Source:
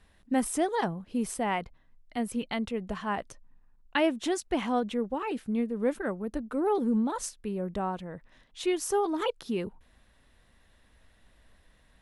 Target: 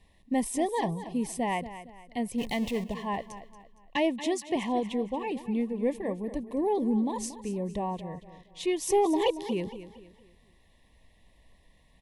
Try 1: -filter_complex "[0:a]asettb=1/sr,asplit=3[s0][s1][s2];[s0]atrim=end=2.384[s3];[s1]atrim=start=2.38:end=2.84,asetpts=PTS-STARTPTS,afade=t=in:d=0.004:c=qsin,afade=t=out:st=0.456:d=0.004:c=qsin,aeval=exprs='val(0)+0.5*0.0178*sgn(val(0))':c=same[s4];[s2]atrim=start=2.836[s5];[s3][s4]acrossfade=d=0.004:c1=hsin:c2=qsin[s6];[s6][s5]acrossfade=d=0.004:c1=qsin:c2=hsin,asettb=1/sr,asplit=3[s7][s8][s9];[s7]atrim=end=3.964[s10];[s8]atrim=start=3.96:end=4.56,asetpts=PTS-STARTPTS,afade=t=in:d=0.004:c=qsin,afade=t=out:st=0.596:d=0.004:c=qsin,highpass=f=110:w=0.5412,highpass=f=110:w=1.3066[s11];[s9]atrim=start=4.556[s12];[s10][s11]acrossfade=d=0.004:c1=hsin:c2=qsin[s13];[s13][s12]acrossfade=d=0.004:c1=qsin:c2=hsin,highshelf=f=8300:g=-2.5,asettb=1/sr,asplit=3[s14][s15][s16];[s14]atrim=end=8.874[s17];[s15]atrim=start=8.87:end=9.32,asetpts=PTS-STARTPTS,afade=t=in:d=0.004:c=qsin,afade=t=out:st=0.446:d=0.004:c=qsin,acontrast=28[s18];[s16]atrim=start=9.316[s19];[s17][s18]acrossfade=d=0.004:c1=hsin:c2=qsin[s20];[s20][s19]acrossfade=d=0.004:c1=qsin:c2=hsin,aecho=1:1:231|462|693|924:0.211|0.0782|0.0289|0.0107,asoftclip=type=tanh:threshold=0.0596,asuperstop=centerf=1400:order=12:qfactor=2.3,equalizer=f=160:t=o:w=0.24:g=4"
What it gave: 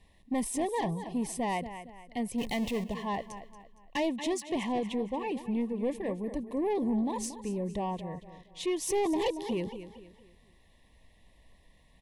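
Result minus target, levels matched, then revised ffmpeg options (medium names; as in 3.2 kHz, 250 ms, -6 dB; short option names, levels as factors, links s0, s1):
saturation: distortion +12 dB
-filter_complex "[0:a]asettb=1/sr,asplit=3[s0][s1][s2];[s0]atrim=end=2.384[s3];[s1]atrim=start=2.38:end=2.84,asetpts=PTS-STARTPTS,afade=t=in:d=0.004:c=qsin,afade=t=out:st=0.456:d=0.004:c=qsin,aeval=exprs='val(0)+0.5*0.0178*sgn(val(0))':c=same[s4];[s2]atrim=start=2.836[s5];[s3][s4]acrossfade=d=0.004:c1=hsin:c2=qsin[s6];[s6][s5]acrossfade=d=0.004:c1=qsin:c2=hsin,asettb=1/sr,asplit=3[s7][s8][s9];[s7]atrim=end=3.964[s10];[s8]atrim=start=3.96:end=4.56,asetpts=PTS-STARTPTS,afade=t=in:d=0.004:c=qsin,afade=t=out:st=0.596:d=0.004:c=qsin,highpass=f=110:w=0.5412,highpass=f=110:w=1.3066[s11];[s9]atrim=start=4.556[s12];[s10][s11]acrossfade=d=0.004:c1=hsin:c2=qsin[s13];[s13][s12]acrossfade=d=0.004:c1=qsin:c2=hsin,highshelf=f=8300:g=-2.5,asettb=1/sr,asplit=3[s14][s15][s16];[s14]atrim=end=8.874[s17];[s15]atrim=start=8.87:end=9.32,asetpts=PTS-STARTPTS,afade=t=in:d=0.004:c=qsin,afade=t=out:st=0.446:d=0.004:c=qsin,acontrast=28[s18];[s16]atrim=start=9.316[s19];[s17][s18]acrossfade=d=0.004:c1=hsin:c2=qsin[s20];[s20][s19]acrossfade=d=0.004:c1=qsin:c2=hsin,aecho=1:1:231|462|693|924:0.211|0.0782|0.0289|0.0107,asoftclip=type=tanh:threshold=0.188,asuperstop=centerf=1400:order=12:qfactor=2.3,equalizer=f=160:t=o:w=0.24:g=4"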